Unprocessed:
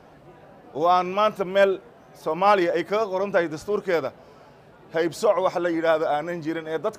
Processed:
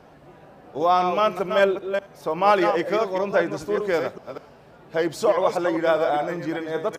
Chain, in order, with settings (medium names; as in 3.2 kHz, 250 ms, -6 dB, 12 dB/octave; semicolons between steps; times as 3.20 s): chunks repeated in reverse 199 ms, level -7 dB; on a send: delay 76 ms -22 dB